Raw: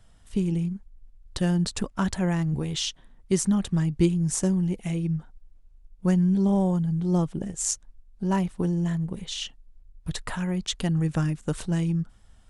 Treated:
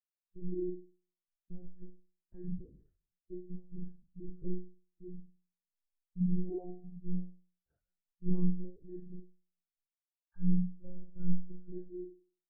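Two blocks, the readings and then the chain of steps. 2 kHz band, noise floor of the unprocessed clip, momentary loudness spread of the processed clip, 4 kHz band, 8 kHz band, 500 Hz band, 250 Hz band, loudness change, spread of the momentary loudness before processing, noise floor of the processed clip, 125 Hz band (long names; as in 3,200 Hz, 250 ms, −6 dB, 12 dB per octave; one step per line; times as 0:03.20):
below −40 dB, −55 dBFS, 19 LU, below −40 dB, below −40 dB, −14.0 dB, −14.0 dB, −13.0 dB, 10 LU, below −85 dBFS, −15.0 dB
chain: one-sided soft clipper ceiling −25.5 dBFS
low-shelf EQ 140 Hz −12 dB
gate pattern "xxxx.xxx.xx...xx" 90 BPM −60 dB
automatic gain control gain up to 3.5 dB
Butterworth low-pass 1,700 Hz 36 dB per octave
parametric band 990 Hz −9 dB 0.37 octaves
double-tracking delay 44 ms −6 dB
downward compressor 4 to 1, threshold −28 dBFS, peak gain reduction 9 dB
on a send: flutter between parallel walls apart 5.6 metres, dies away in 0.98 s
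on the sum: one-pitch LPC vocoder at 8 kHz 180 Hz
every bin expanded away from the loudest bin 2.5 to 1
level −1 dB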